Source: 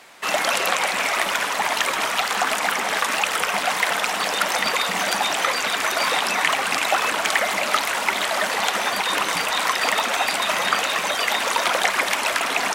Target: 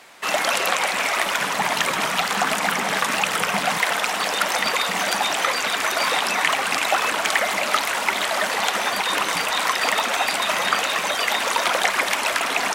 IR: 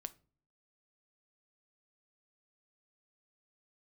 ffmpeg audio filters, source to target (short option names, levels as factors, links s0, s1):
-filter_complex "[0:a]asettb=1/sr,asplit=3[s0][s1][s2];[s0]atrim=end=1.404[s3];[s1]atrim=start=1.4:end=3.78,asetpts=PTS-STARTPTS,afade=t=in:d=0.004:c=qsin,afade=t=out:st=2.376:d=0.004:c=qsin,equalizer=f=160:t=o:w=1:g=12[s4];[s2]atrim=start=3.776[s5];[s3][s4]acrossfade=d=0.004:c1=hsin:c2=qsin[s6];[s6][s5]acrossfade=d=0.004:c1=qsin:c2=hsin"